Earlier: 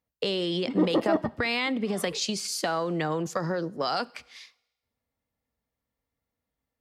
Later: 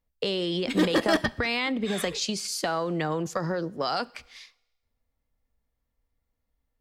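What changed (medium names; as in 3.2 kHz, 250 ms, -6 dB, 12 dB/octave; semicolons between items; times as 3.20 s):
background: remove Savitzky-Golay filter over 65 samples; master: remove high-pass 100 Hz 12 dB/octave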